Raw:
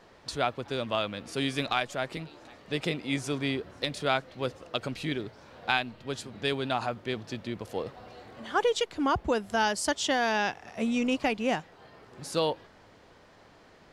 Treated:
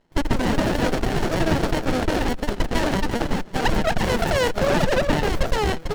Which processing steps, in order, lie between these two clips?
echo 0.827 s -9 dB; in parallel at -10 dB: companded quantiser 2-bit; on the sum: echoes that change speed 0.203 s, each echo -4 st, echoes 3; bell 500 Hz +9.5 dB 0.33 oct; limiter -14.5 dBFS, peak gain reduction 11.5 dB; gate -27 dBFS, range -16 dB; fifteen-band EQ 400 Hz +10 dB, 1600 Hz +7 dB, 4000 Hz -12 dB; speed mistake 33 rpm record played at 78 rpm; running maximum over 33 samples; gain +2.5 dB

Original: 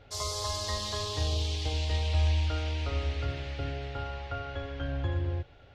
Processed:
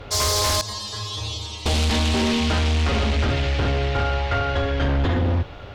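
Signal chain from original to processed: 0.61–1.66 metallic resonator 110 Hz, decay 0.55 s, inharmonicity 0.002; buzz 100 Hz, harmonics 13, -65 dBFS -1 dB/oct; sine folder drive 13 dB, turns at -17 dBFS

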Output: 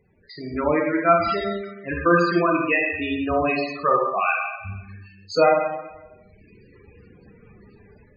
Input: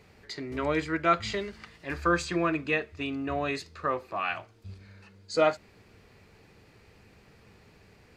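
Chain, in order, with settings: bin magnitudes rounded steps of 15 dB; reverb removal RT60 1.7 s; dynamic EQ 230 Hz, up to +4 dB, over -58 dBFS, Q 6.3; AGC gain up to 14 dB; Schroeder reverb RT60 1.1 s, combs from 31 ms, DRR -1 dB; loudest bins only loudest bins 32; gain -5 dB

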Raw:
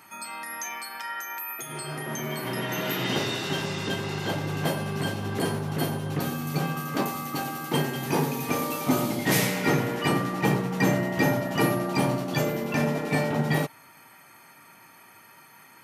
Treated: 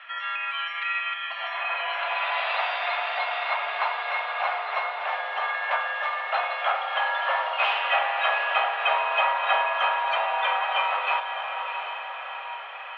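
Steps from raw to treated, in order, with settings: in parallel at +2 dB: compressor, threshold -33 dBFS, peak gain reduction 14 dB; on the sum: diffused feedback echo 0.867 s, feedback 59%, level -7 dB; mistuned SSB +190 Hz 400–2400 Hz; varispeed +22%; gain +1.5 dB

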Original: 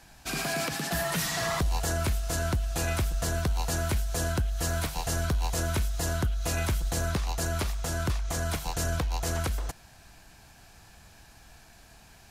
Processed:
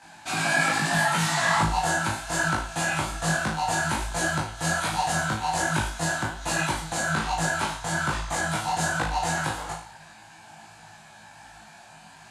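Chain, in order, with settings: speaker cabinet 150–9700 Hz, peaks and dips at 150 Hz +4 dB, 270 Hz -3 dB, 430 Hz -9 dB, 880 Hz +9 dB, 1600 Hz +3 dB, 5500 Hz -6 dB; on a send: flutter echo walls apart 3.2 m, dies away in 0.46 s; on the sum: detuned doubles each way 42 cents; gain +6 dB

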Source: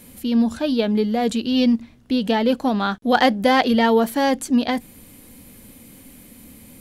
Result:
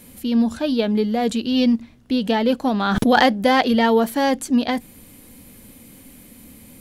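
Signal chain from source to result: 2.71–3.33 backwards sustainer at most 26 dB/s

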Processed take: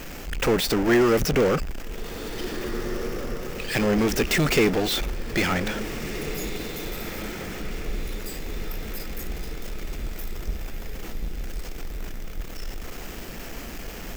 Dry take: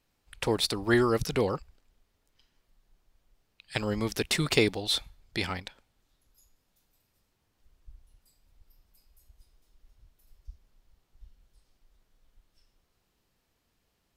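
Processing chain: power-law curve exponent 0.35; fifteen-band EQ 100 Hz -10 dB, 1000 Hz -6 dB, 4000 Hz -9 dB, 10000 Hz -10 dB; diffused feedback echo 1.84 s, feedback 56%, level -11 dB; gain -2.5 dB

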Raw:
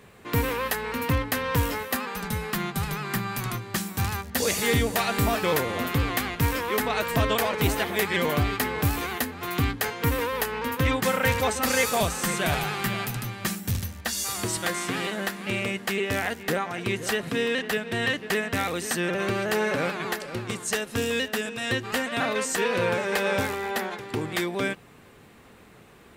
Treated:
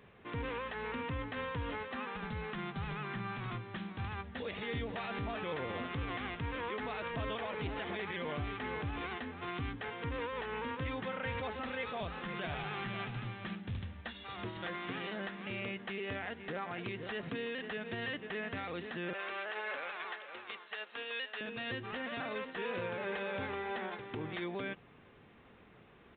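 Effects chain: 19.13–21.41 HPF 760 Hz 12 dB/oct; limiter -21.5 dBFS, peak gain reduction 7.5 dB; downsampling 8000 Hz; gain -8 dB

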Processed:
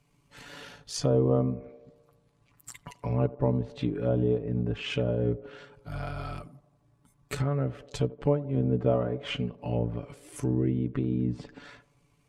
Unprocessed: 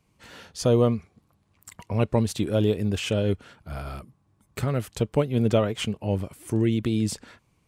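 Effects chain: treble ducked by the level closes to 1100 Hz, closed at -20 dBFS; granular stretch 1.6×, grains 37 ms; narrowing echo 86 ms, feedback 64%, band-pass 520 Hz, level -17.5 dB; in parallel at -1 dB: compressor, threshold -32 dBFS, peak gain reduction 15.5 dB; on the sum: gain -4.5 dB

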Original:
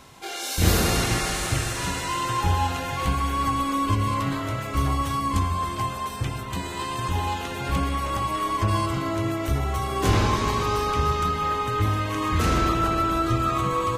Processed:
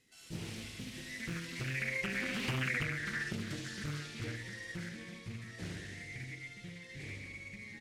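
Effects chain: CVSD 32 kbps; Doppler pass-by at 4.92, 22 m/s, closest 4.6 m; band shelf 520 Hz -13 dB; speakerphone echo 0.13 s, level -6 dB; dynamic EQ 850 Hz, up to +6 dB, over -49 dBFS, Q 0.91; wide varispeed 1.79×; reverb, pre-delay 3 ms, DRR 5.5 dB; compressor 8:1, threshold -39 dBFS, peak gain reduction 20 dB; Doppler distortion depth 0.74 ms; gain +6 dB

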